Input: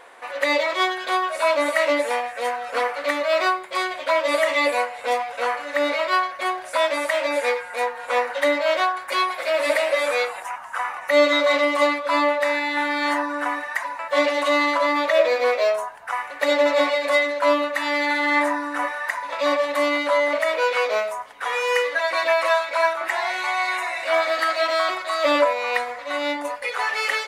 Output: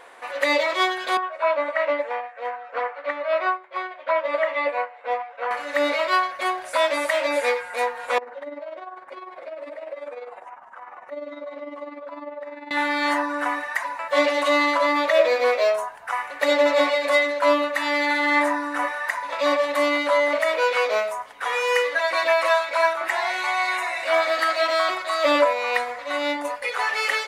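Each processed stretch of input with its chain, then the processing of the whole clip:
1.17–5.51 s: band-pass 410–2000 Hz + upward expansion, over -35 dBFS
8.18–12.71 s: compression 5:1, threshold -27 dBFS + tremolo 20 Hz, depth 62% + band-pass filter 380 Hz, Q 0.68
whole clip: none

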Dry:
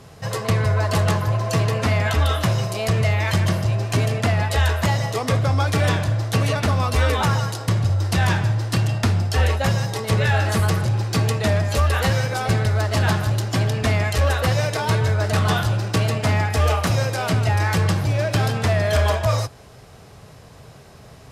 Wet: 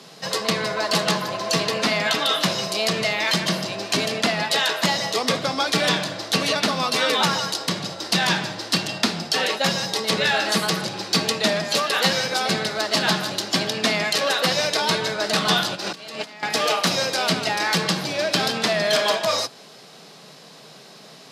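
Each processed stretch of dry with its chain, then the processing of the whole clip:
15.75–16.43 s: bass shelf 200 Hz -9 dB + compressor with a negative ratio -31 dBFS, ratio -0.5
whole clip: steep high-pass 160 Hz 48 dB/octave; peaking EQ 4.2 kHz +11 dB 1.2 oct

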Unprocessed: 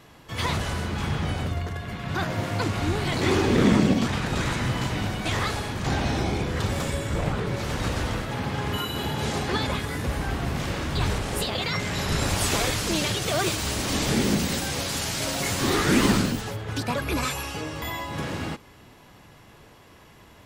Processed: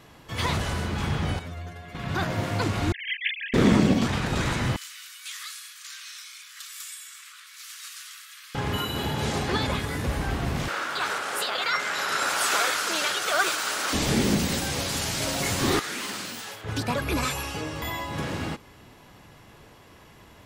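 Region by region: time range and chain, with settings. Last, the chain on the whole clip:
1.39–1.95 s: bass shelf 110 Hz -10 dB + inharmonic resonator 84 Hz, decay 0.23 s, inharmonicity 0.002
2.92–3.54 s: formants replaced by sine waves + brick-wall FIR high-pass 1.6 kHz
4.76–8.55 s: steep high-pass 1.1 kHz 96 dB/octave + differentiator
10.68–13.93 s: high-pass 540 Hz + peaking EQ 1.4 kHz +11.5 dB 0.47 oct
15.79–16.64 s: high-pass 1.4 kHz 6 dB/octave + compression 2.5:1, threshold -33 dBFS + doubling 49 ms -6 dB
whole clip: none

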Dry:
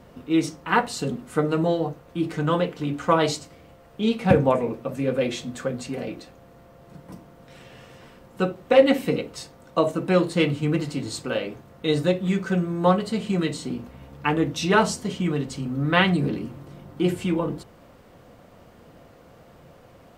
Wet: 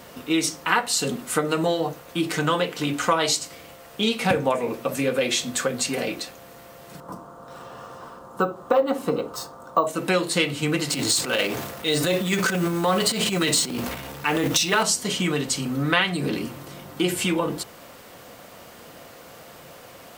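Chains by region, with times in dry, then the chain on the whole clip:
7.00–9.87 s: resonant high shelf 1.6 kHz -10 dB, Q 3 + decimation joined by straight lines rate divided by 2×
10.89–14.83 s: companding laws mixed up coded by mu + transient shaper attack -9 dB, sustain +8 dB
whole clip: tilt EQ +3 dB/octave; compression 3:1, threshold -28 dBFS; trim +8 dB

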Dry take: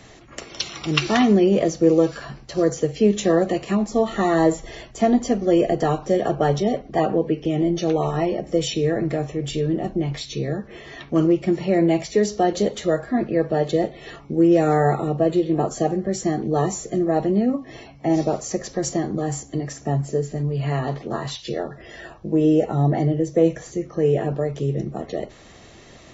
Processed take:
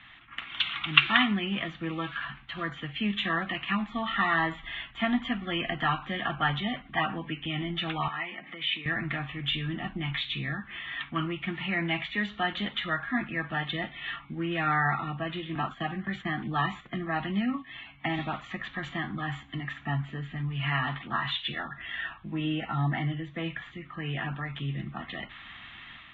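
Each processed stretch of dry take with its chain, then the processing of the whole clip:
8.08–8.86 s: peaking EQ 2.1 kHz +7.5 dB 0.5 oct + compression 2:1, threshold -31 dBFS + band-pass 230–4200 Hz
15.55–18.19 s: gate -33 dBFS, range -9 dB + three bands compressed up and down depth 40%
whole clip: band-stop 590 Hz, Q 13; level rider gain up to 6 dB; FFT filter 270 Hz 0 dB, 450 Hz -19 dB, 870 Hz +5 dB, 1.3 kHz +14 dB, 3.5 kHz +15 dB, 5.2 kHz -28 dB, 8.9 kHz -21 dB; trim -13.5 dB

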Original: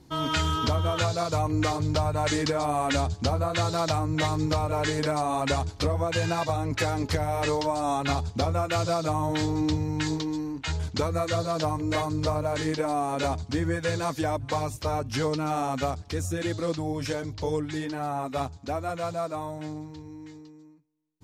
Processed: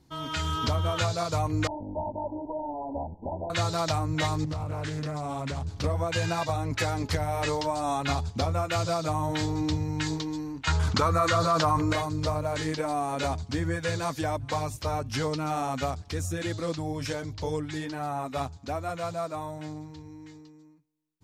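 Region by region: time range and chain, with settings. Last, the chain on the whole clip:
1.67–3.50 s: comb filter that takes the minimum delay 3.3 ms + brick-wall FIR low-pass 1 kHz + tilt EQ +2.5 dB/octave
4.44–5.84 s: peaking EQ 140 Hz +9.5 dB 2 oct + compression 5:1, threshold -28 dBFS + loudspeaker Doppler distortion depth 0.3 ms
10.67–11.93 s: peaking EQ 1.2 kHz +10.5 dB 0.79 oct + level flattener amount 70%
whole clip: peaking EQ 380 Hz -3 dB 1.5 oct; level rider gain up to 6 dB; trim -6.5 dB

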